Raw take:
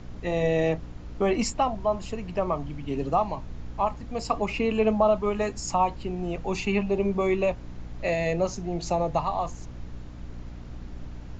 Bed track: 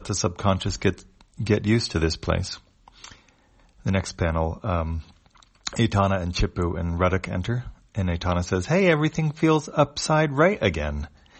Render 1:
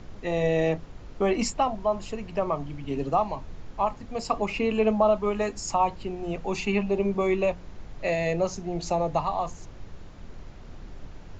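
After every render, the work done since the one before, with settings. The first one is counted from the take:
mains-hum notches 60/120/180/240/300 Hz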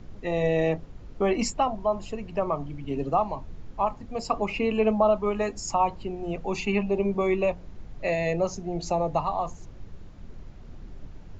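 broadband denoise 6 dB, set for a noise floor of −44 dBFS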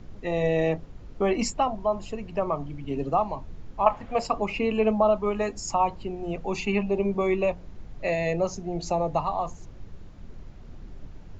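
0:03.86–0:04.27: flat-topped bell 1,300 Hz +10.5 dB 2.9 octaves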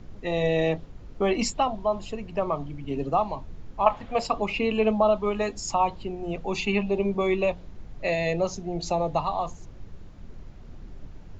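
dynamic equaliser 3,600 Hz, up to +8 dB, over −53 dBFS, Q 2.1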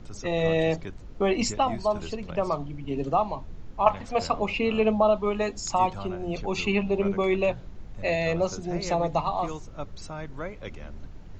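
mix in bed track −17.5 dB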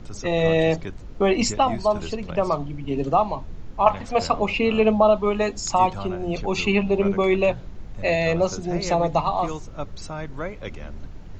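level +4.5 dB
brickwall limiter −2 dBFS, peak gain reduction 2 dB

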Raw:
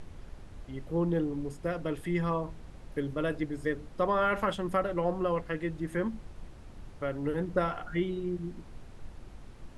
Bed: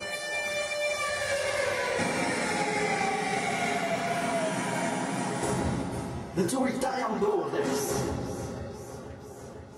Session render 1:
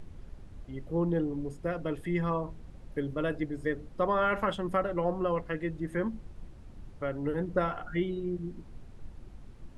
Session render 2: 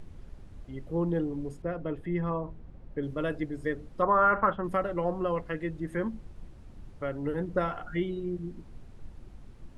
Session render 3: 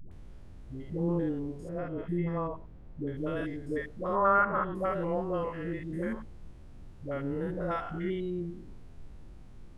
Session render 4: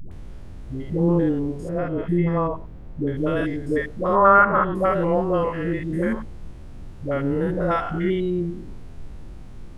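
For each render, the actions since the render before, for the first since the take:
broadband denoise 6 dB, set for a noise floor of −49 dBFS
0:01.62–0:03.03: low-pass filter 1,400 Hz 6 dB per octave; 0:04.02–0:04.64: low-pass with resonance 1,300 Hz, resonance Q 2.3
spectrum averaged block by block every 100 ms; all-pass dispersion highs, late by 115 ms, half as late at 400 Hz
level +10.5 dB

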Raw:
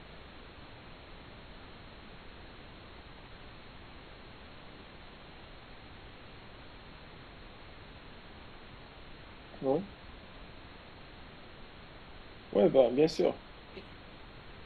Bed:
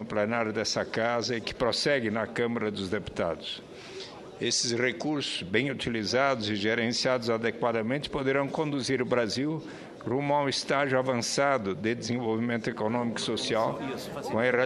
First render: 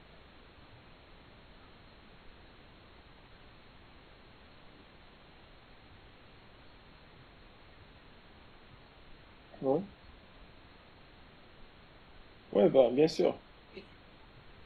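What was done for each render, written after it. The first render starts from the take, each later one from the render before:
noise reduction from a noise print 6 dB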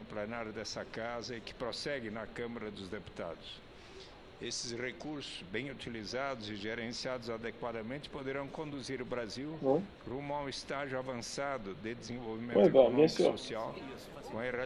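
mix in bed −12.5 dB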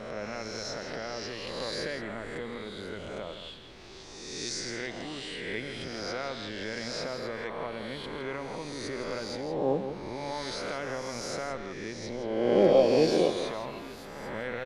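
peak hold with a rise ahead of every peak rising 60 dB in 1.49 s
single-tap delay 165 ms −9.5 dB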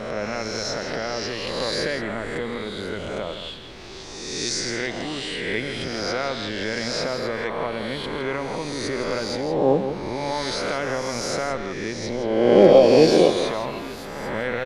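level +9 dB
brickwall limiter −2 dBFS, peak gain reduction 2.5 dB

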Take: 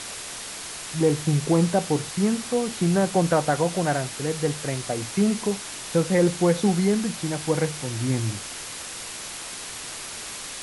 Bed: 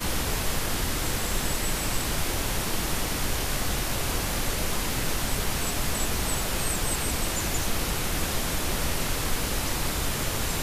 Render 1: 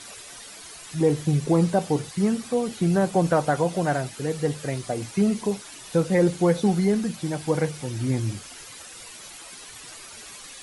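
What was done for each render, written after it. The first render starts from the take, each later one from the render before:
broadband denoise 11 dB, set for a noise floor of −36 dBFS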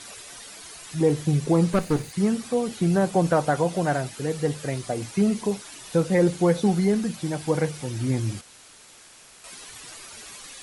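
0:01.73–0:02.13: lower of the sound and its delayed copy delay 0.46 ms
0:08.41–0:09.44: fill with room tone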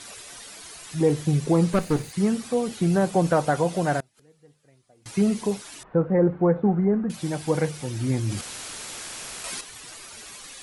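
0:04.00–0:05.06: gate with flip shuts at −31 dBFS, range −30 dB
0:05.83–0:07.10: low-pass filter 1,500 Hz 24 dB per octave
0:08.27–0:09.61: envelope flattener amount 50%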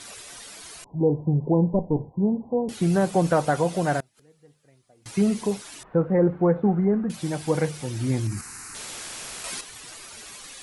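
0:00.84–0:02.69: Chebyshev low-pass filter 1,000 Hz, order 8
0:08.27–0:08.75: phaser with its sweep stopped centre 1,400 Hz, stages 4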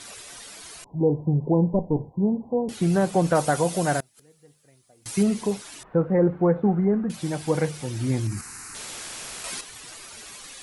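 0:03.35–0:05.23: high-shelf EQ 5,900 Hz +11.5 dB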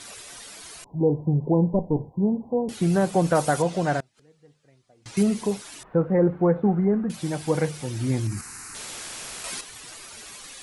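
0:03.62–0:05.17: high-frequency loss of the air 110 metres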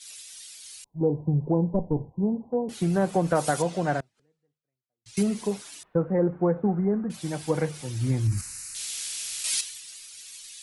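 downward compressor 3 to 1, threshold −22 dBFS, peak gain reduction 5.5 dB
multiband upward and downward expander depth 100%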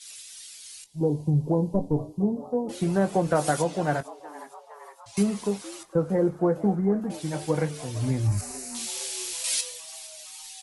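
double-tracking delay 20 ms −11.5 dB
echo with shifted repeats 461 ms, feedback 63%, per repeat +130 Hz, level −19 dB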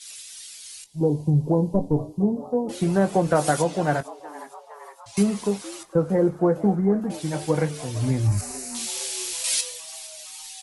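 level +3 dB

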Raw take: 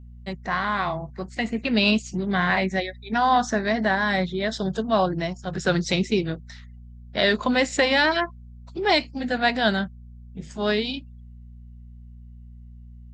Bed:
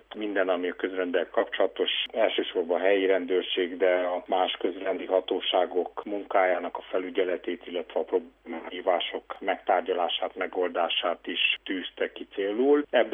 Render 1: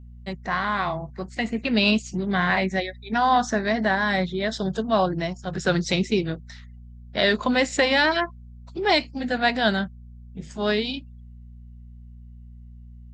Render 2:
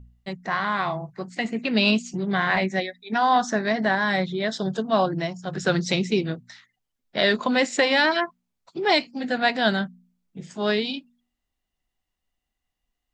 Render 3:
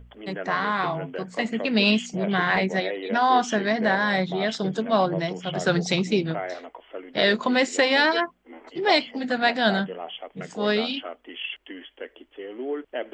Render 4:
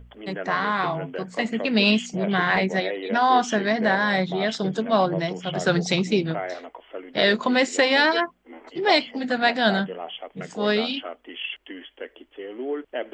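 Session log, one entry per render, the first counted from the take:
no processing that can be heard
hum removal 60 Hz, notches 4
mix in bed −8.5 dB
level +1 dB

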